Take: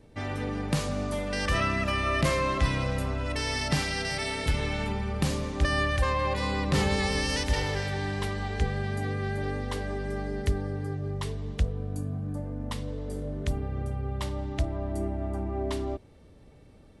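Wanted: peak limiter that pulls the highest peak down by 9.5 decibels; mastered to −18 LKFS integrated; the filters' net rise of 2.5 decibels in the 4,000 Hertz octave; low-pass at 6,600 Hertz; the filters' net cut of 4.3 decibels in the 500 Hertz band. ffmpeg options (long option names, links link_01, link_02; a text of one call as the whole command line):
ffmpeg -i in.wav -af "lowpass=6600,equalizer=frequency=500:width_type=o:gain=-5.5,equalizer=frequency=4000:width_type=o:gain=4,volume=14dB,alimiter=limit=-7dB:level=0:latency=1" out.wav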